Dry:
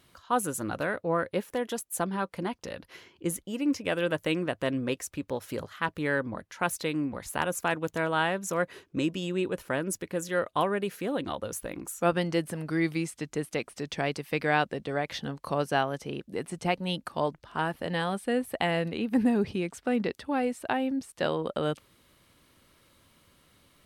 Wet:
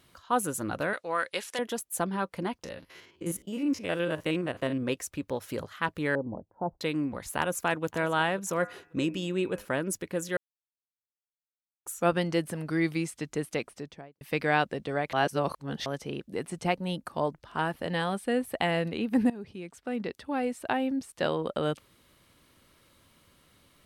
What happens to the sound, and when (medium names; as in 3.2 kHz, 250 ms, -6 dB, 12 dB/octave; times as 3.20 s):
0.93–1.59 s: frequency weighting ITU-R 468
2.64–4.83 s: spectrogram pixelated in time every 50 ms
6.15–6.81 s: elliptic low-pass 860 Hz, stop band 70 dB
7.38–7.85 s: echo throw 540 ms, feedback 20%, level -18 dB
8.54–9.65 s: de-hum 102.7 Hz, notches 26
10.37–11.86 s: mute
13.54–14.21 s: studio fade out
15.13–15.86 s: reverse
16.72–17.42 s: dynamic bell 3.2 kHz, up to -6 dB, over -45 dBFS, Q 0.72
19.30–20.71 s: fade in, from -17.5 dB